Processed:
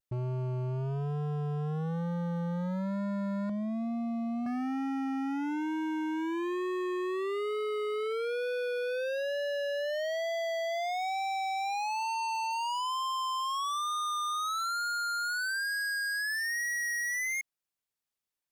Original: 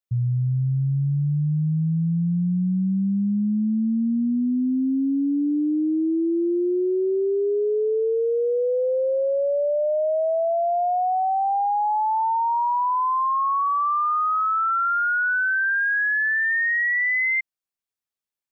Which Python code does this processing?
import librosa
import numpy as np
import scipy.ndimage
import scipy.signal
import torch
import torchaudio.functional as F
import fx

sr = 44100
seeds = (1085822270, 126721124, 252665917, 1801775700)

y = fx.low_shelf(x, sr, hz=300.0, db=-10.0, at=(3.49, 4.46))
y = fx.vibrato(y, sr, rate_hz=1.1, depth_cents=56.0)
y = np.clip(y, -10.0 ** (-32.0 / 20.0), 10.0 ** (-32.0 / 20.0))